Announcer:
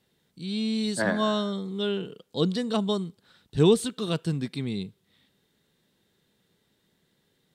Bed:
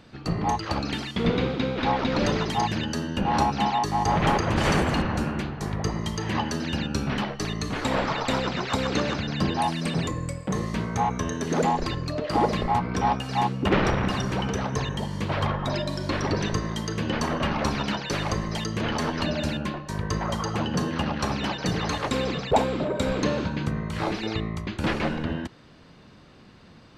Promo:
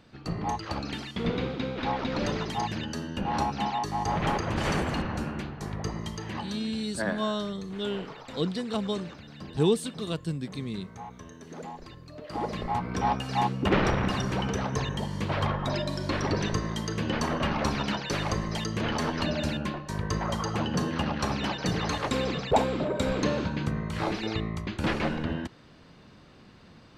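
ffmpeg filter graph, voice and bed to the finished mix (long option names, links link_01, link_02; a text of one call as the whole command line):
ffmpeg -i stem1.wav -i stem2.wav -filter_complex "[0:a]adelay=6000,volume=-4dB[link_01];[1:a]volume=10dB,afade=type=out:start_time=6.01:duration=0.81:silence=0.251189,afade=type=in:start_time=12.08:duration=1.15:silence=0.16788[link_02];[link_01][link_02]amix=inputs=2:normalize=0" out.wav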